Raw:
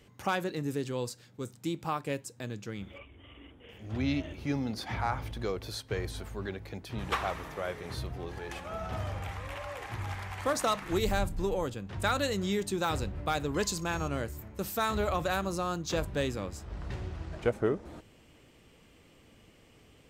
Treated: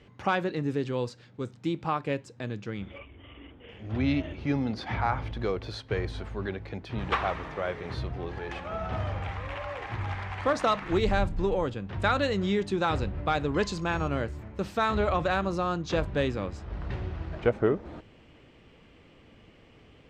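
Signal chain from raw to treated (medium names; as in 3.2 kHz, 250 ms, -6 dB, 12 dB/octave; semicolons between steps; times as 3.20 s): low-pass 3.5 kHz 12 dB/octave; trim +4 dB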